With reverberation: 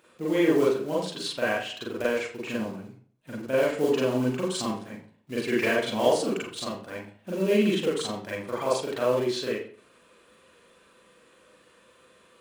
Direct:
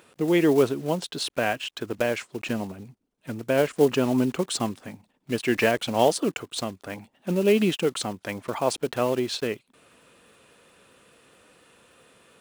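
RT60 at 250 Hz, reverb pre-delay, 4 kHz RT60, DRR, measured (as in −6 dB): 0.45 s, 38 ms, 0.40 s, −7.0 dB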